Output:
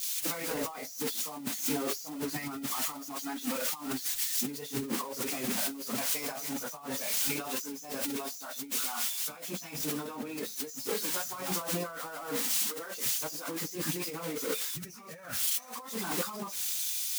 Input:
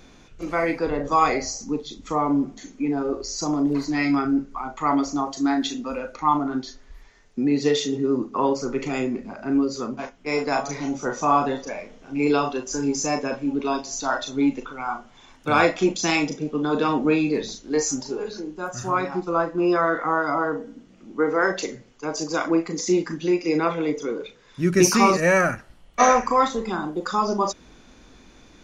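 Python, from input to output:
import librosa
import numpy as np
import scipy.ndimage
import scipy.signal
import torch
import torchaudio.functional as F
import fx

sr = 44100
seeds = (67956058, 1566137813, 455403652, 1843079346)

y = x + 0.5 * 10.0 ** (-14.5 / 20.0) * np.diff(np.sign(x), prepend=np.sign(x[:1]))
y = scipy.signal.sosfilt(scipy.signal.butter(2, 130.0, 'highpass', fs=sr, output='sos'), y)
y = fx.stretch_vocoder_free(y, sr, factor=0.6)
y = fx.peak_eq(y, sr, hz=350.0, db=-10.0, octaves=0.38)
y = fx.over_compress(y, sr, threshold_db=-33.0, ratio=-1.0)
y = fx.band_widen(y, sr, depth_pct=100)
y = y * librosa.db_to_amplitude(-2.5)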